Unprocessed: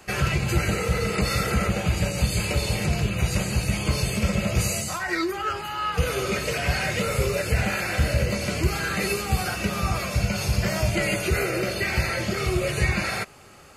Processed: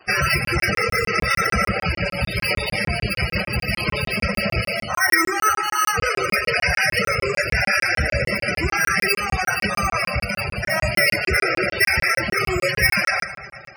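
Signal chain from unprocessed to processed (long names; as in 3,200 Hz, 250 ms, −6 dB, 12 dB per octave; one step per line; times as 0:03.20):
dynamic equaliser 1,900 Hz, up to +5 dB, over −40 dBFS, Q 1.8
bad sample-rate conversion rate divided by 6×, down filtered, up hold
on a send: echo machine with several playback heads 118 ms, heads first and second, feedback 70%, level −22 dB
on the sum: dead-zone distortion −52 dBFS
reverb reduction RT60 0.56 s
in parallel at −2 dB: brickwall limiter −22 dBFS, peak gain reduction 12 dB
0:10.19–0:10.70: on the sum: downward compressor 6 to 1, threshold −20 dBFS, peak gain reduction 5 dB
low-shelf EQ 460 Hz −10 dB
comb and all-pass reverb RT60 1.1 s, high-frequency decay 0.55×, pre-delay 30 ms, DRR 9.5 dB
spectral peaks only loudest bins 64
regular buffer underruns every 0.15 s, samples 1,024, zero, from 0:00.45
level +6 dB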